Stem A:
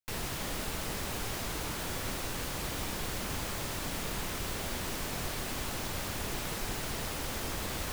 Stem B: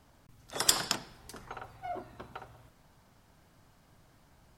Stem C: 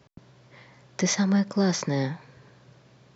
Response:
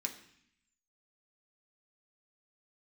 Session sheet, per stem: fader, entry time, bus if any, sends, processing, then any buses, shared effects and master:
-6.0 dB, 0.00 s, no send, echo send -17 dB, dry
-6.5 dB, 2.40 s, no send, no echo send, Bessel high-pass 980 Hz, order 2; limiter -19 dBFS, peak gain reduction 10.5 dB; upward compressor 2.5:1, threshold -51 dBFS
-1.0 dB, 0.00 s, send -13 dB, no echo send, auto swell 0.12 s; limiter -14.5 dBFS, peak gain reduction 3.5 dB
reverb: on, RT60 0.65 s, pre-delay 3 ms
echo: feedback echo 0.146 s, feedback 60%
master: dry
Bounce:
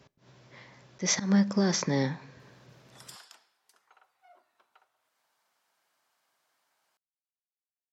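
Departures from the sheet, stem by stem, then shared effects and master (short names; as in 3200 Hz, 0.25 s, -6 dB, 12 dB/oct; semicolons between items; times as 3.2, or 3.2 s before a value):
stem A: muted; stem B -6.5 dB -> -15.0 dB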